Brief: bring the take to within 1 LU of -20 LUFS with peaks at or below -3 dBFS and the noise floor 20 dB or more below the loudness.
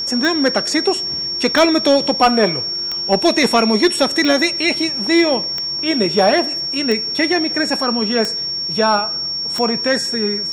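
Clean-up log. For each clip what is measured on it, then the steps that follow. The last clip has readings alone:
clicks 8; steady tone 5500 Hz; tone level -20 dBFS; loudness -16.0 LUFS; peak -4.0 dBFS; loudness target -20.0 LUFS
-> de-click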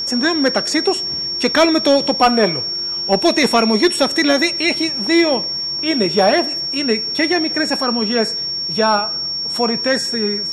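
clicks 0; steady tone 5500 Hz; tone level -20 dBFS
-> notch 5500 Hz, Q 30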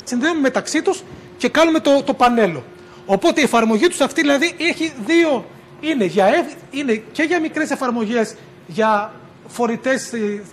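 steady tone none; loudness -17.5 LUFS; peak -5.5 dBFS; loudness target -20.0 LUFS
-> gain -2.5 dB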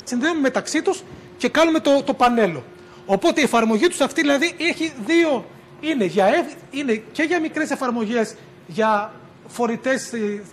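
loudness -20.0 LUFS; peak -8.0 dBFS; noise floor -45 dBFS

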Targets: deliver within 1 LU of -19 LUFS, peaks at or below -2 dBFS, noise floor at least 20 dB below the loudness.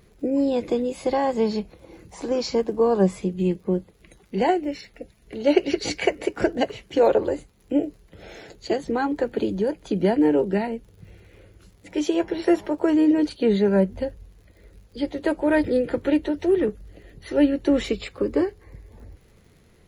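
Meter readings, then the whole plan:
ticks 57/s; loudness -23.5 LUFS; peak -5.0 dBFS; loudness target -19.0 LUFS
-> de-click; gain +4.5 dB; limiter -2 dBFS

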